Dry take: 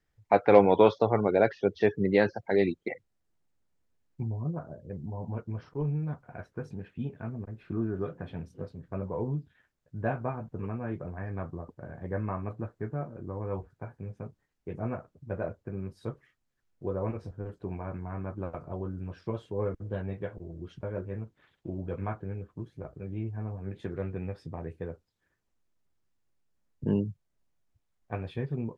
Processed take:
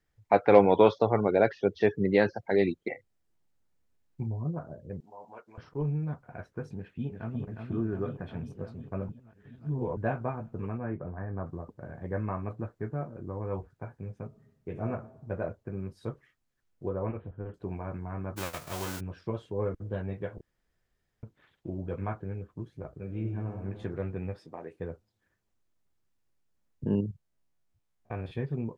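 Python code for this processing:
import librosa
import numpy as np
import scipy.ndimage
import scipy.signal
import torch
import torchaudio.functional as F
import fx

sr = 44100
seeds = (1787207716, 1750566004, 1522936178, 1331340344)

y = fx.doubler(x, sr, ms=30.0, db=-10.0, at=(2.92, 4.26), fade=0.02)
y = fx.highpass(y, sr, hz=700.0, slope=12, at=(5.0, 5.58))
y = fx.echo_throw(y, sr, start_s=6.75, length_s=0.72, ms=360, feedback_pct=75, wet_db=-5.0)
y = fx.lowpass(y, sr, hz=fx.line((10.77, 2500.0), (11.45, 1400.0)), slope=24, at=(10.77, 11.45), fade=0.02)
y = fx.reverb_throw(y, sr, start_s=14.26, length_s=0.6, rt60_s=0.95, drr_db=6.0)
y = fx.ellip_lowpass(y, sr, hz=3200.0, order=4, stop_db=40, at=(16.89, 17.54))
y = fx.envelope_flatten(y, sr, power=0.3, at=(18.36, 18.99), fade=0.02)
y = fx.reverb_throw(y, sr, start_s=22.98, length_s=0.63, rt60_s=2.2, drr_db=4.0)
y = fx.highpass(y, sr, hz=310.0, slope=12, at=(24.39, 24.8))
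y = fx.spec_steps(y, sr, hold_ms=50, at=(26.86, 28.31), fade=0.02)
y = fx.edit(y, sr, fx.reverse_span(start_s=9.09, length_s=0.88),
    fx.room_tone_fill(start_s=20.41, length_s=0.82), tone=tone)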